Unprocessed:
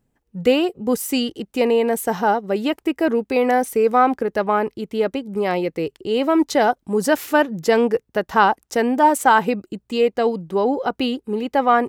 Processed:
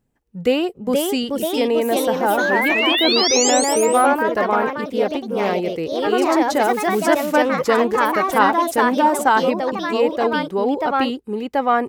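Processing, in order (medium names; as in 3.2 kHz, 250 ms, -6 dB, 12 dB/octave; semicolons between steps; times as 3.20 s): painted sound rise, 2.37–3.50 s, 1.4–7.8 kHz -20 dBFS; ever faster or slower copies 528 ms, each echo +2 st, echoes 3; trim -1.5 dB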